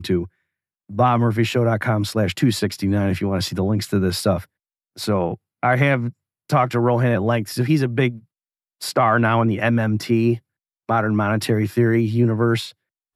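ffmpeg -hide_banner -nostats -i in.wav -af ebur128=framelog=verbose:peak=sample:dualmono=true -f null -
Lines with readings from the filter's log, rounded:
Integrated loudness:
  I:         -17.1 LUFS
  Threshold: -27.5 LUFS
Loudness range:
  LRA:         2.1 LU
  Threshold: -37.7 LUFS
  LRA low:   -19.0 LUFS
  LRA high:  -16.9 LUFS
Sample peak:
  Peak:       -4.6 dBFS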